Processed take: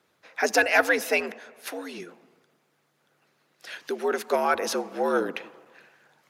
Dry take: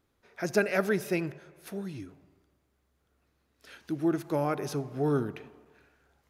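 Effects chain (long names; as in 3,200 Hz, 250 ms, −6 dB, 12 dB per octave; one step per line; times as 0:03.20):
mid-hump overdrive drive 9 dB, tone 6,800 Hz, clips at −13 dBFS
frequency shifter +79 Hz
harmonic and percussive parts rebalanced harmonic −8 dB
level +8.5 dB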